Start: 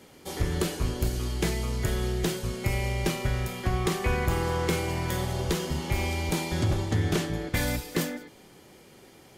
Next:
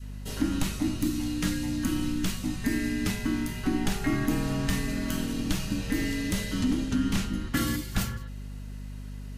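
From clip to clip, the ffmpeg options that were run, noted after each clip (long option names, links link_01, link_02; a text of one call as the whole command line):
ffmpeg -i in.wav -af "afreqshift=-360,aeval=exprs='val(0)+0.0141*(sin(2*PI*50*n/s)+sin(2*PI*2*50*n/s)/2+sin(2*PI*3*50*n/s)/3+sin(2*PI*4*50*n/s)/4+sin(2*PI*5*50*n/s)/5)':channel_layout=same,adynamicequalizer=threshold=0.00794:dfrequency=690:dqfactor=0.8:tfrequency=690:tqfactor=0.8:attack=5:release=100:ratio=0.375:range=2.5:mode=cutabove:tftype=bell" out.wav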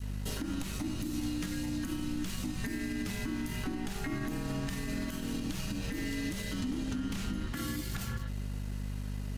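ffmpeg -i in.wav -af "acompressor=threshold=-29dB:ratio=6,aeval=exprs='sgn(val(0))*max(abs(val(0))-0.00282,0)':channel_layout=same,alimiter=level_in=5.5dB:limit=-24dB:level=0:latency=1:release=123,volume=-5.5dB,volume=3.5dB" out.wav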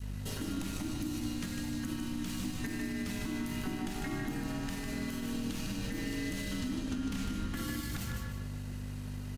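ffmpeg -i in.wav -af "aecho=1:1:152|304|456|608:0.562|0.191|0.065|0.0221,volume=-2dB" out.wav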